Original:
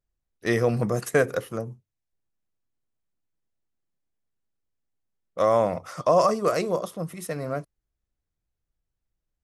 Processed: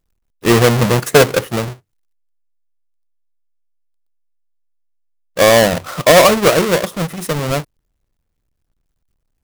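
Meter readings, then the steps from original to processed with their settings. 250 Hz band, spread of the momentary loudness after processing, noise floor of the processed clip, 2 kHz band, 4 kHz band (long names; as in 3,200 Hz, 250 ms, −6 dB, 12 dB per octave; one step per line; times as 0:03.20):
+12.0 dB, 14 LU, −71 dBFS, +15.0 dB, +22.5 dB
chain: each half-wave held at its own peak
level +7.5 dB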